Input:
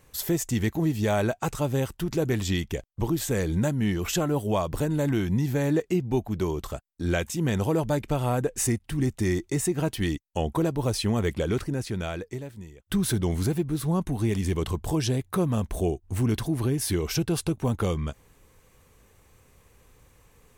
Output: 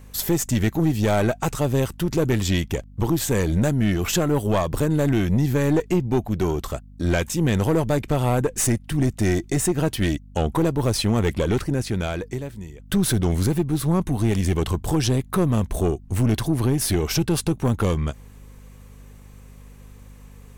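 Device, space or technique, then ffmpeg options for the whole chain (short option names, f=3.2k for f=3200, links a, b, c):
valve amplifier with mains hum: -af "aeval=exprs='(tanh(10*val(0)+0.4)-tanh(0.4))/10':c=same,aeval=exprs='val(0)+0.00316*(sin(2*PI*50*n/s)+sin(2*PI*2*50*n/s)/2+sin(2*PI*3*50*n/s)/3+sin(2*PI*4*50*n/s)/4+sin(2*PI*5*50*n/s)/5)':c=same,volume=7dB"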